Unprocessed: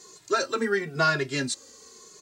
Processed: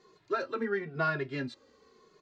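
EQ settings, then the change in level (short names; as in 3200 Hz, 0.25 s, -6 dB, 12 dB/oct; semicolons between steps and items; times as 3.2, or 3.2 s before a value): air absorption 340 m; -5.0 dB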